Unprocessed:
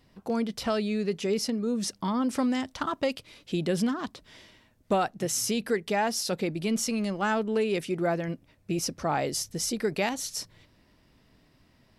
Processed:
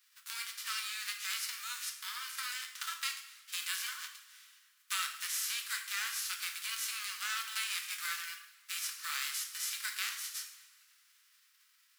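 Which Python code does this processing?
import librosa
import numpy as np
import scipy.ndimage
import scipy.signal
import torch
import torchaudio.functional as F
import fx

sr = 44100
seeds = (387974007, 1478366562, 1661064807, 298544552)

y = fx.envelope_flatten(x, sr, power=0.3)
y = scipy.signal.sosfilt(scipy.signal.butter(8, 1200.0, 'highpass', fs=sr, output='sos'), y)
y = fx.rev_double_slope(y, sr, seeds[0], early_s=0.67, late_s=3.2, knee_db=-21, drr_db=3.5)
y = y * librosa.db_to_amplitude(-7.5)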